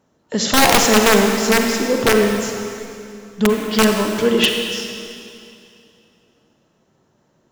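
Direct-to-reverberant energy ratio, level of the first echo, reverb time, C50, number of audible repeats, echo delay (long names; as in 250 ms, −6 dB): 2.5 dB, no echo audible, 2.6 s, 3.0 dB, no echo audible, no echo audible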